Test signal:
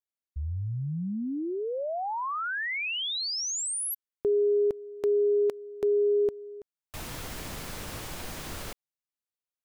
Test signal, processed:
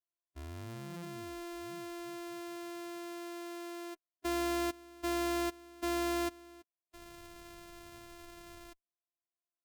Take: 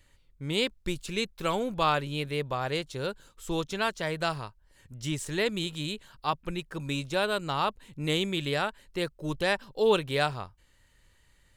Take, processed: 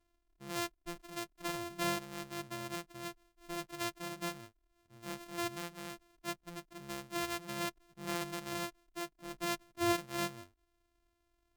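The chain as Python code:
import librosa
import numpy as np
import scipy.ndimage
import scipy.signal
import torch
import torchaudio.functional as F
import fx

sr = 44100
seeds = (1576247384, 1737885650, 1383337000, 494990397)

y = np.r_[np.sort(x[:len(x) // 128 * 128].reshape(-1, 128), axis=1).ravel(), x[len(x) // 128 * 128:]]
y = fx.hpss(y, sr, part='percussive', gain_db=-16)
y = fx.cheby_harmonics(y, sr, harmonics=(7,), levels_db=(-25,), full_scale_db=-12.5)
y = y * librosa.db_to_amplitude(-8.5)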